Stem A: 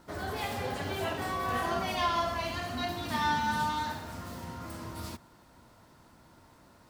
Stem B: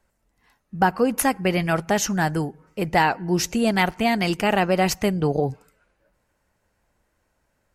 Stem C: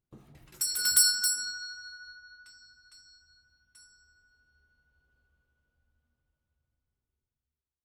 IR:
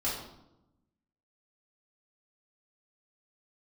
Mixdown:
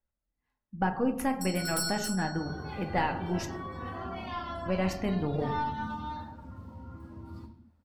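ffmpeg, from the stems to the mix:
-filter_complex "[0:a]adelay=2300,volume=-13.5dB,asplit=2[link_01][link_02];[link_02]volume=-3.5dB[link_03];[1:a]volume=-13.5dB,asplit=3[link_04][link_05][link_06];[link_04]atrim=end=3.5,asetpts=PTS-STARTPTS,afade=type=out:start_time=3.496:duration=0.004:curve=hsin[link_07];[link_05]atrim=start=3.5:end=4.66,asetpts=PTS-STARTPTS,volume=0[link_08];[link_06]atrim=start=4.66,asetpts=PTS-STARTPTS,afade=type=in:duration=0.004:curve=hsin[link_09];[link_07][link_08][link_09]concat=n=3:v=0:a=1,asplit=2[link_10][link_11];[link_11]volume=-9dB[link_12];[2:a]adelay=800,volume=-5dB[link_13];[3:a]atrim=start_sample=2205[link_14];[link_03][link_12]amix=inputs=2:normalize=0[link_15];[link_15][link_14]afir=irnorm=-1:irlink=0[link_16];[link_01][link_10][link_13][link_16]amix=inputs=4:normalize=0,aeval=exprs='0.188*(cos(1*acos(clip(val(0)/0.188,-1,1)))-cos(1*PI/2))+0.00473*(cos(8*acos(clip(val(0)/0.188,-1,1)))-cos(8*PI/2))':channel_layout=same,afftdn=noise_reduction=12:noise_floor=-49,bass=frequency=250:gain=5,treble=frequency=4000:gain=-7"

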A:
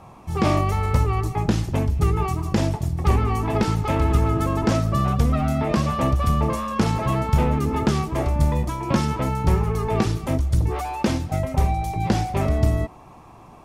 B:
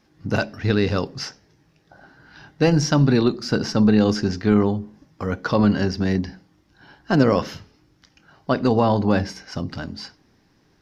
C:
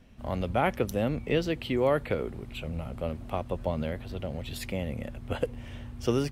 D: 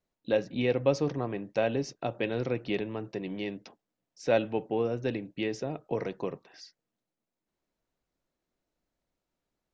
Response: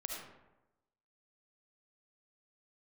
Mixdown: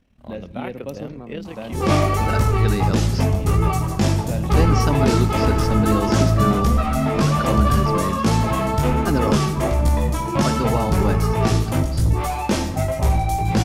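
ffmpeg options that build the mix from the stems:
-filter_complex "[0:a]highshelf=frequency=4300:gain=6,asoftclip=type=tanh:threshold=-13dB,flanger=delay=17:depth=3.6:speed=1.3,adelay=1450,volume=3dB,asplit=2[link_01][link_02];[link_02]volume=-3.5dB[link_03];[1:a]adelay=1950,volume=-5dB[link_04];[2:a]tremolo=f=37:d=0.667,volume=-4dB[link_05];[3:a]equalizer=frequency=200:width=2.6:gain=15,volume=-9.5dB,asplit=2[link_06][link_07];[link_07]volume=-12.5dB[link_08];[4:a]atrim=start_sample=2205[link_09];[link_03][link_08]amix=inputs=2:normalize=0[link_10];[link_10][link_09]afir=irnorm=-1:irlink=0[link_11];[link_01][link_04][link_05][link_06][link_11]amix=inputs=5:normalize=0"

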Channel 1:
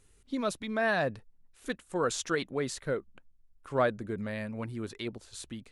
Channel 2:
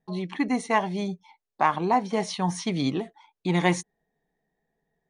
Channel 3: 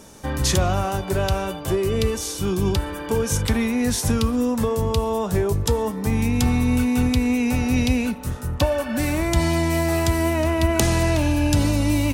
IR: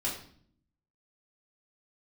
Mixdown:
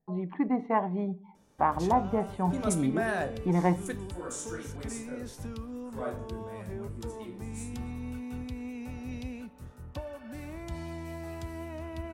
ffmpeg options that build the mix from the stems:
-filter_complex "[0:a]aexciter=amount=15.6:drive=4:freq=6200,adynamicsmooth=sensitivity=5.5:basefreq=7700,adelay=2200,volume=-4dB,asplit=2[link_01][link_02];[link_02]volume=-11.5dB[link_03];[1:a]lowpass=1300,volume=-2.5dB,asplit=3[link_04][link_05][link_06];[link_05]volume=-20.5dB[link_07];[2:a]adelay=1350,volume=-18.5dB[link_08];[link_06]apad=whole_len=349063[link_09];[link_01][link_09]sidechaingate=range=-33dB:threshold=-56dB:ratio=16:detection=peak[link_10];[3:a]atrim=start_sample=2205[link_11];[link_03][link_07]amix=inputs=2:normalize=0[link_12];[link_12][link_11]afir=irnorm=-1:irlink=0[link_13];[link_10][link_04][link_08][link_13]amix=inputs=4:normalize=0,highshelf=frequency=3100:gain=-7.5"

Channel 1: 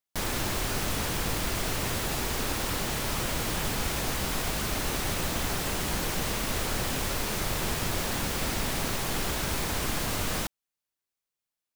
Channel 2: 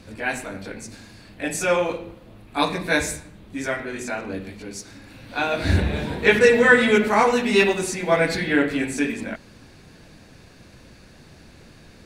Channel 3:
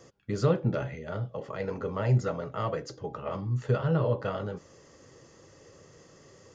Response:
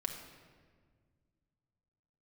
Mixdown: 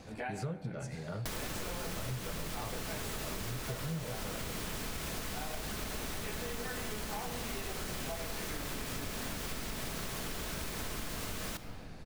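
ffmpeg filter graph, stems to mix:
-filter_complex "[0:a]adelay=1100,volume=2dB,asplit=2[link_01][link_02];[link_02]volume=-9.5dB[link_03];[1:a]acompressor=threshold=-29dB:ratio=2,equalizer=frequency=790:width=3.6:gain=15,volume=-9.5dB,asplit=2[link_04][link_05];[link_05]volume=-9dB[link_06];[2:a]equalizer=frequency=160:width_type=o:width=0.5:gain=9.5,volume=-5dB[link_07];[link_01][link_04]amix=inputs=2:normalize=0,equalizer=frequency=840:width_type=o:width=0.24:gain=-8,acompressor=threshold=-31dB:ratio=6,volume=0dB[link_08];[3:a]atrim=start_sample=2205[link_09];[link_03][link_06]amix=inputs=2:normalize=0[link_10];[link_10][link_09]afir=irnorm=-1:irlink=0[link_11];[link_07][link_08][link_11]amix=inputs=3:normalize=0,acompressor=threshold=-36dB:ratio=6"

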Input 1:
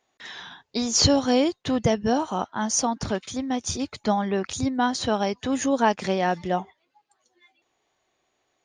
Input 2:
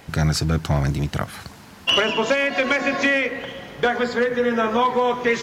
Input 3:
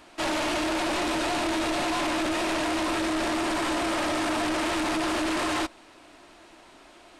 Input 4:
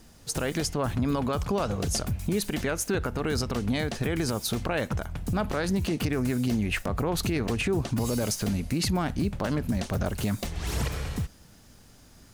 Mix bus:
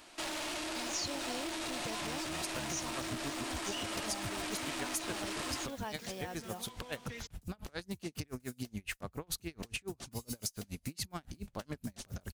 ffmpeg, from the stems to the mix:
ffmpeg -i stem1.wav -i stem2.wav -i stem3.wav -i stem4.wav -filter_complex "[0:a]acrusher=bits=6:mix=0:aa=0.000001,volume=-15.5dB,asplit=2[link_01][link_02];[1:a]acrossover=split=240|3000[link_03][link_04][link_05];[link_04]acompressor=threshold=-29dB:ratio=6[link_06];[link_03][link_06][link_05]amix=inputs=3:normalize=0,adelay=1850,volume=-15.5dB[link_07];[2:a]volume=-7.5dB[link_08];[3:a]aeval=exprs='val(0)*pow(10,-35*(0.5-0.5*cos(2*PI*7.1*n/s))/20)':channel_layout=same,adelay=2150,volume=-3.5dB[link_09];[link_02]apad=whole_len=320714[link_10];[link_07][link_10]sidechaincompress=threshold=-38dB:ratio=8:attack=16:release=1430[link_11];[link_01][link_11][link_08][link_09]amix=inputs=4:normalize=0,highshelf=frequency=2900:gain=10.5,acompressor=threshold=-42dB:ratio=2" out.wav

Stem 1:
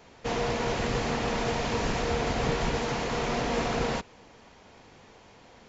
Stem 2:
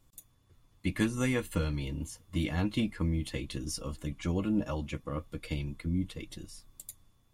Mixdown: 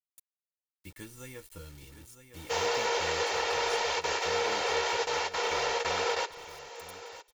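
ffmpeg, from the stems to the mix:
ffmpeg -i stem1.wav -i stem2.wav -filter_complex "[0:a]highpass=frequency=460:width=0.5412,highpass=frequency=460:width=1.3066,adelay=2250,volume=-0.5dB,asplit=2[link_01][link_02];[link_02]volume=-16dB[link_03];[1:a]acrusher=bits=6:mix=0:aa=0.000001,volume=-17dB,asplit=3[link_04][link_05][link_06];[link_05]volume=-10.5dB[link_07];[link_06]apad=whole_len=349923[link_08];[link_01][link_08]sidechaingate=range=-33dB:threshold=-60dB:ratio=16:detection=peak[link_09];[link_03][link_07]amix=inputs=2:normalize=0,aecho=0:1:960:1[link_10];[link_09][link_04][link_10]amix=inputs=3:normalize=0,highshelf=frequency=4100:gain=9,aecho=1:1:2.2:0.48,adynamicequalizer=threshold=0.00316:dfrequency=6900:dqfactor=0.7:tfrequency=6900:tqfactor=0.7:attack=5:release=100:ratio=0.375:range=4:mode=cutabove:tftype=highshelf" out.wav

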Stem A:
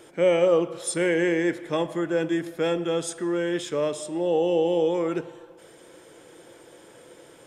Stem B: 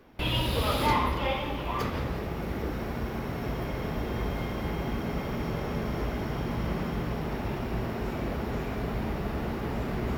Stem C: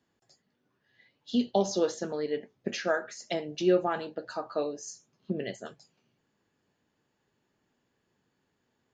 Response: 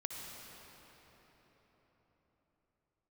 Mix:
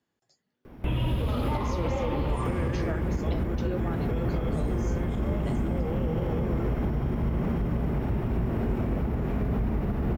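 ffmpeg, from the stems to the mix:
-filter_complex "[0:a]adelay=1500,volume=-7dB,asplit=2[link_01][link_02];[link_02]volume=-10.5dB[link_03];[1:a]lowshelf=frequency=370:gain=11,adelay=650,volume=0dB,asplit=2[link_04][link_05];[link_05]volume=-6.5dB[link_06];[2:a]volume=-4.5dB[link_07];[link_01][link_04]amix=inputs=2:normalize=0,acrossover=split=4500[link_08][link_09];[link_09]acompressor=threshold=-57dB:ratio=4:attack=1:release=60[link_10];[link_08][link_10]amix=inputs=2:normalize=0,alimiter=limit=-20dB:level=0:latency=1:release=46,volume=0dB[link_11];[3:a]atrim=start_sample=2205[link_12];[link_03][link_06]amix=inputs=2:normalize=0[link_13];[link_13][link_12]afir=irnorm=-1:irlink=0[link_14];[link_07][link_11][link_14]amix=inputs=3:normalize=0,alimiter=limit=-19dB:level=0:latency=1:release=311"

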